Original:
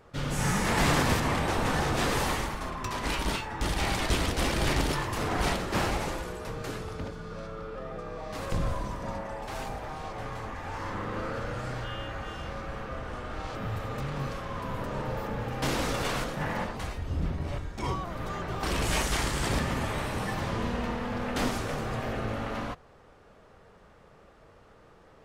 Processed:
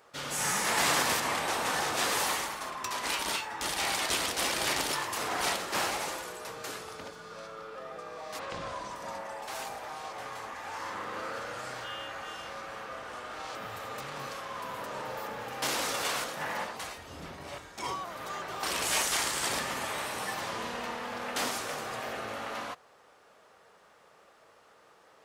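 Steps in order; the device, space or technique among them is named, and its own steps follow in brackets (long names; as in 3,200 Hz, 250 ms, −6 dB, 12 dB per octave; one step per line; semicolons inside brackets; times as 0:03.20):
0:08.38–0:08.94: low-pass filter 3,200 Hz → 8,300 Hz 12 dB per octave
filter by subtraction (in parallel: low-pass filter 830 Hz 12 dB per octave + polarity inversion)
on the sum: high-shelf EQ 3,500 Hz +10 dB
level −3.5 dB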